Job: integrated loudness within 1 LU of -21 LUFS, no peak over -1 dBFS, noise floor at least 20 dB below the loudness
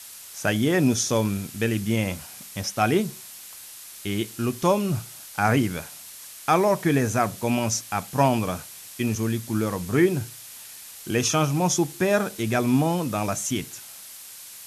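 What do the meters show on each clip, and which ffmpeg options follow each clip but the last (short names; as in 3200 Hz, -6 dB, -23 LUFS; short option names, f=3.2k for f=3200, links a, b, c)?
noise floor -43 dBFS; noise floor target -45 dBFS; loudness -24.5 LUFS; peak -7.5 dBFS; loudness target -21.0 LUFS
-> -af "afftdn=nr=6:nf=-43"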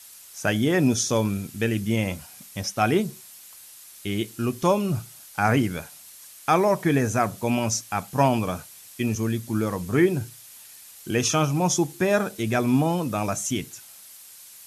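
noise floor -47 dBFS; loudness -24.5 LUFS; peak -7.5 dBFS; loudness target -21.0 LUFS
-> -af "volume=3.5dB"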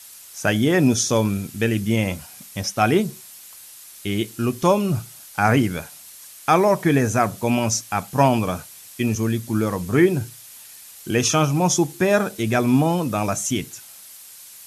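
loudness -21.0 LUFS; peak -4.0 dBFS; noise floor -43 dBFS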